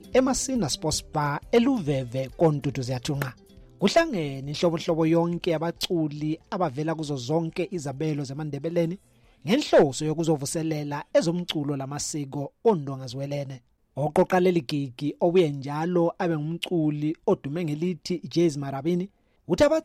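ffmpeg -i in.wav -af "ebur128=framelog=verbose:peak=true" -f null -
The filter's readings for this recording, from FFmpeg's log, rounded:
Integrated loudness:
  I:         -25.9 LUFS
  Threshold: -36.2 LUFS
Loudness range:
  LRA:         3.2 LU
  Threshold: -46.2 LUFS
  LRA low:   -28.3 LUFS
  LRA high:  -25.1 LUFS
True peak:
  Peak:      -10.7 dBFS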